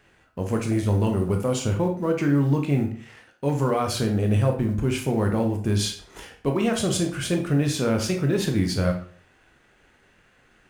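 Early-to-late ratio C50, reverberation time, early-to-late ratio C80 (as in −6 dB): 8.5 dB, 0.50 s, 13.5 dB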